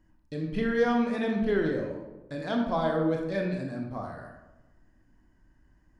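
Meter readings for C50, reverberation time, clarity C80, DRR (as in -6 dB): 4.0 dB, 1.1 s, 6.5 dB, 1.0 dB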